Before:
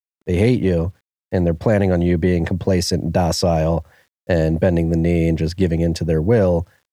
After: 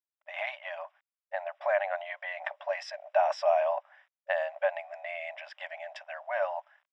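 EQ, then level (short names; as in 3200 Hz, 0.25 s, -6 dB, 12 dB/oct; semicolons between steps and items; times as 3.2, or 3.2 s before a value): polynomial smoothing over 25 samples; brick-wall FIR high-pass 570 Hz; air absorption 81 m; -3.5 dB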